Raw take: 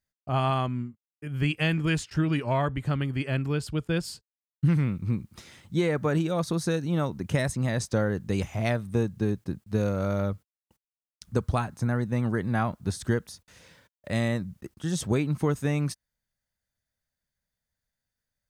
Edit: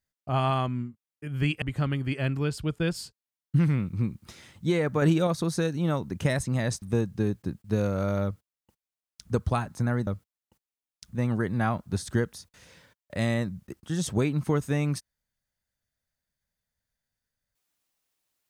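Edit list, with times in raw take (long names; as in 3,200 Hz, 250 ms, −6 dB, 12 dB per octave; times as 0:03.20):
0:01.62–0:02.71: remove
0:06.11–0:06.36: clip gain +4 dB
0:07.91–0:08.84: remove
0:10.26–0:11.34: duplicate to 0:12.09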